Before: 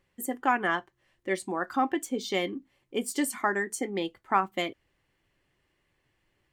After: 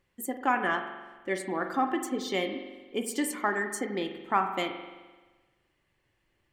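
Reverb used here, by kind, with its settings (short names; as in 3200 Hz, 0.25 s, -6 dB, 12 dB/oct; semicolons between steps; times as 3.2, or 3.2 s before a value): spring tank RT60 1.3 s, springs 43 ms, chirp 35 ms, DRR 6.5 dB; gain -1.5 dB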